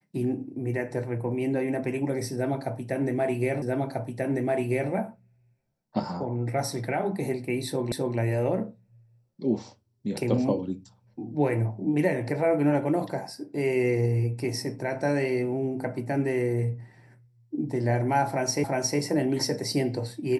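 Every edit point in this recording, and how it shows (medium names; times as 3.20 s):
3.62 s: repeat of the last 1.29 s
7.92 s: repeat of the last 0.26 s
18.64 s: repeat of the last 0.36 s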